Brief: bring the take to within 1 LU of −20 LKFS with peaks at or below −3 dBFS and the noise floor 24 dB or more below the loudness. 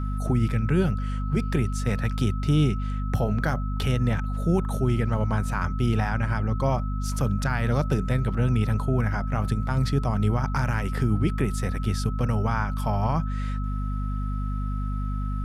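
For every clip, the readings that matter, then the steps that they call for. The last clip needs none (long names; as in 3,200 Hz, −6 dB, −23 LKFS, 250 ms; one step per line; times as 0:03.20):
mains hum 50 Hz; hum harmonics up to 250 Hz; level of the hum −25 dBFS; interfering tone 1,300 Hz; level of the tone −39 dBFS; integrated loudness −26.0 LKFS; sample peak −10.5 dBFS; target loudness −20.0 LKFS
→ hum removal 50 Hz, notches 5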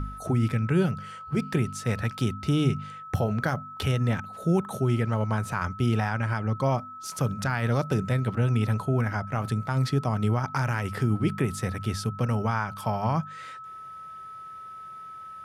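mains hum none found; interfering tone 1,300 Hz; level of the tone −39 dBFS
→ notch filter 1,300 Hz, Q 30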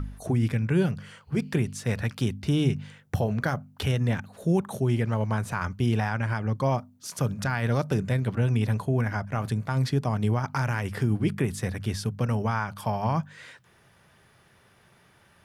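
interfering tone none found; integrated loudness −27.5 LKFS; sample peak −12.0 dBFS; target loudness −20.0 LKFS
→ level +7.5 dB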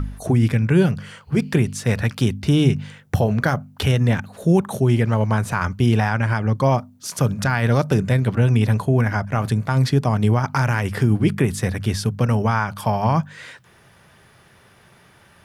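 integrated loudness −20.0 LKFS; sample peak −4.5 dBFS; background noise floor −52 dBFS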